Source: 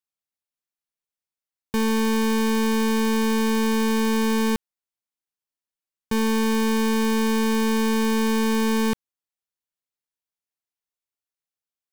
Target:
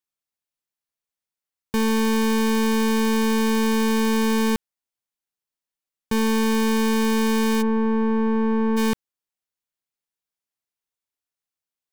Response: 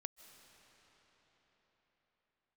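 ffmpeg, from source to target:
-filter_complex "[0:a]asplit=3[a][b][c];[a]afade=t=out:st=7.61:d=0.02[d];[b]lowpass=1.2k,afade=t=in:st=7.61:d=0.02,afade=t=out:st=8.76:d=0.02[e];[c]afade=t=in:st=8.76:d=0.02[f];[d][e][f]amix=inputs=3:normalize=0,volume=1dB"

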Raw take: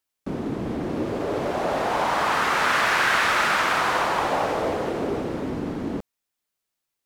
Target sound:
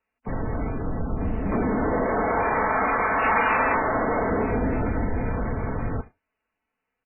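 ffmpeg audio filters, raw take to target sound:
-filter_complex "[0:a]asettb=1/sr,asplit=3[a][b][c];[a]atrim=end=4.504[d];[b]atrim=start=4.5:end=5.33,asetpts=PTS-STARTPTS,afade=t=in:d=0.004:c=qsin,afade=t=out:st=0.826:d=0.004:c=qsin,bandreject=f=1.5k:w=13[e];[c]atrim=start=5.326[f];[d][e]acrossfade=d=0.004:c1=hsin:c2=qsin[g];[g][f]acrossfade=d=0.004:c1=qsin:c2=hsin,aecho=1:1:4.7:0.49,asettb=1/sr,asplit=3[h][i][j];[h]atrim=end=0.704[k];[i]atrim=start=0.7:end=1.52,asetpts=PTS-STARTPTS,afade=t=in:d=0.004:c=qsin,afade=t=out:st=0.816:d=0.004:c=qsin,acrossover=split=540|1300[l][m][n];[l]acompressor=threshold=-25dB:ratio=4[o];[m]acompressor=threshold=-39dB:ratio=4[p];[n]acompressor=threshold=-51dB:ratio=4[q];[o][p][q]amix=inputs=3:normalize=0[r];[j]atrim=start=1.516[s];[k][r]acrossfade=d=0.004:c1=hsin:c2=qsin[t];[t][s]acrossfade=d=0.004:c1=qsin:c2=hsin,highpass=f=360:t=q:w=0.5412,highpass=f=360:t=q:w=1.307,lowpass=f=3k:t=q:w=0.5176,lowpass=f=3k:t=q:w=0.7071,lowpass=f=3k:t=q:w=1.932,afreqshift=-390,acompressor=threshold=-26dB:ratio=10,asoftclip=type=tanh:threshold=-23dB,asettb=1/sr,asplit=3[u][v][w];[u]atrim=end=3.244[x];[v]atrim=start=3.24:end=3.77,asetpts=PTS-STARTPTS,afade=t=in:d=0.004:c=qsin,afade=t=out:st=0.526:d=0.004:c=qsin,highshelf=f=2k:g=9.5[y];[w]atrim=start=3.766[z];[x][y]acrossfade=d=0.004:c1=hsin:c2=qsin[aa];[aa][z]acrossfade=d=0.004:c1=qsin:c2=hsin,aecho=1:1:74:0.0891,volume=8dB" -ar 8000 -c:a libmp3lame -b:a 8k

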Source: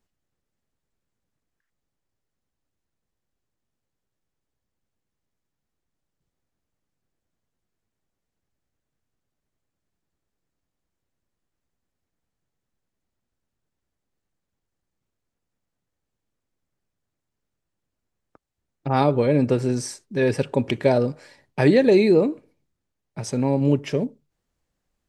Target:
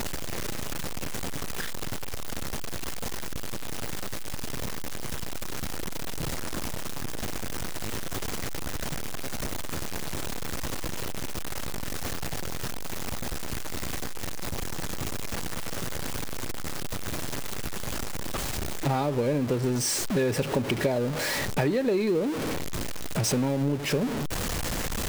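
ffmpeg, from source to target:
-af "aeval=exprs='val(0)+0.5*0.0708*sgn(val(0))':c=same,acompressor=threshold=-22dB:ratio=10"

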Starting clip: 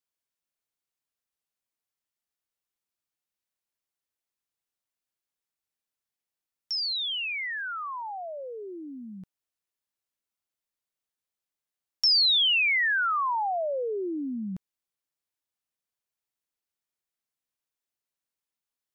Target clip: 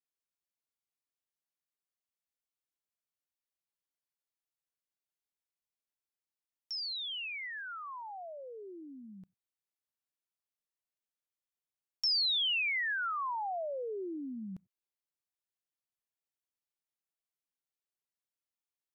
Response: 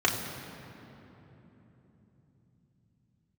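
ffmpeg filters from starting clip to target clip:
-filter_complex "[0:a]asplit=2[a][b];[1:a]atrim=start_sample=2205,afade=t=out:st=0.15:d=0.01,atrim=end_sample=7056,lowpass=2.7k[c];[b][c]afir=irnorm=-1:irlink=0,volume=-34.5dB[d];[a][d]amix=inputs=2:normalize=0,volume=-8.5dB"

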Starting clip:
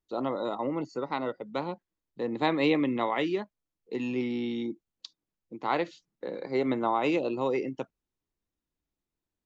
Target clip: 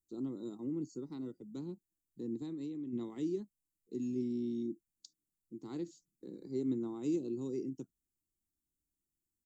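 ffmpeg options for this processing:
-filter_complex "[0:a]firequalizer=gain_entry='entry(350,0);entry(560,-25);entry(1300,-23);entry(2300,-26);entry(4900,-5);entry(7400,9)':delay=0.05:min_phase=1,asplit=3[a][b][c];[a]afade=t=out:st=2.36:d=0.02[d];[b]acompressor=threshold=-35dB:ratio=6,afade=t=in:st=2.36:d=0.02,afade=t=out:st=2.92:d=0.02[e];[c]afade=t=in:st=2.92:d=0.02[f];[d][e][f]amix=inputs=3:normalize=0,volume=-4.5dB"

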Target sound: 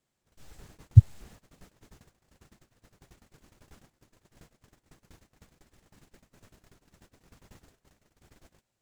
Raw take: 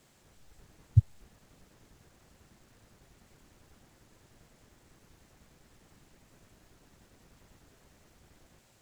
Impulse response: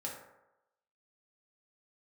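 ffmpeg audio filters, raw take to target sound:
-af "agate=range=-25dB:threshold=-58dB:ratio=16:detection=peak,volume=7.5dB"

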